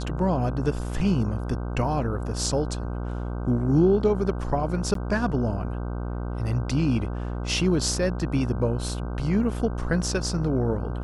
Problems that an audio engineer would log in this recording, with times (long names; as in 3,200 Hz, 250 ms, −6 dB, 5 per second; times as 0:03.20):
mains buzz 60 Hz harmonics 26 −30 dBFS
0:04.94–0:04.95: drop-out 13 ms